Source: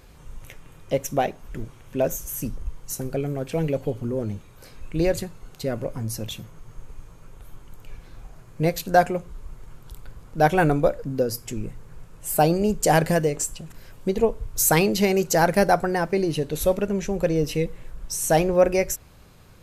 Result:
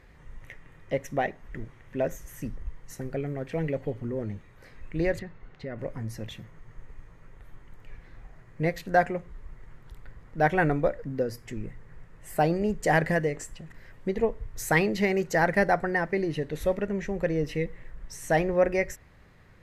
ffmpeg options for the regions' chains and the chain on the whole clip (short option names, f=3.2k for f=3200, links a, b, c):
-filter_complex "[0:a]asettb=1/sr,asplit=3[a][b][c];[a]atrim=end=5.194[d];[b]atrim=start=5.19:end=5.79,asetpts=PTS-STARTPTS,afade=t=in:d=0.004:c=qsin,afade=t=out:st=0.596:d=0.004:c=qsin,lowpass=3.8k,acompressor=threshold=-28dB:ratio=3:attack=3.2:release=140:knee=1:detection=peak[e];[c]atrim=start=5.786[f];[d][e]acrossfade=d=0.004:c1=hsin:c2=qsin[g];[g][f]acrossfade=d=0.004:c1=qsin:c2=hsin,lowpass=f=2.4k:p=1,equalizer=f=1.9k:w=4.4:g=14.5,volume=-5dB"